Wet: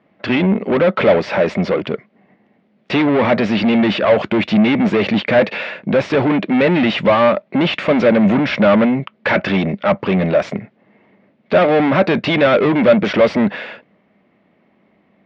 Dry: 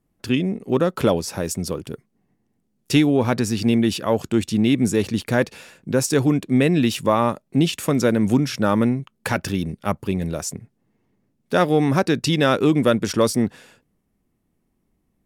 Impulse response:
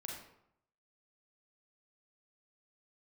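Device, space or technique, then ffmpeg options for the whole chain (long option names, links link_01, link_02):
overdrive pedal into a guitar cabinet: -filter_complex "[0:a]asplit=2[link_01][link_02];[link_02]highpass=frequency=720:poles=1,volume=30dB,asoftclip=type=tanh:threshold=-5.5dB[link_03];[link_01][link_03]amix=inputs=2:normalize=0,lowpass=frequency=3300:poles=1,volume=-6dB,highpass=76,equalizer=frequency=200:width_type=q:width=4:gain=7,equalizer=frequency=600:width_type=q:width=4:gain=9,equalizer=frequency=2100:width_type=q:width=4:gain=6,lowpass=frequency=3600:width=0.5412,lowpass=frequency=3600:width=1.3066,volume=-3.5dB"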